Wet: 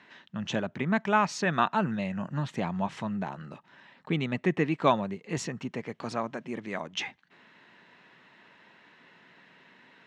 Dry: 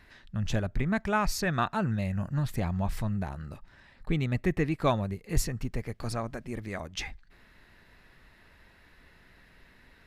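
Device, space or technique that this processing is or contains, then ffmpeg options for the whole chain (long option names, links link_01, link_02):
television speaker: -af "highpass=frequency=160:width=0.5412,highpass=frequency=160:width=1.3066,equalizer=frequency=960:width_type=q:width=4:gain=5,equalizer=frequency=3000:width_type=q:width=4:gain=5,equalizer=frequency=4800:width_type=q:width=4:gain=-7,lowpass=frequency=6600:width=0.5412,lowpass=frequency=6600:width=1.3066,volume=2dB"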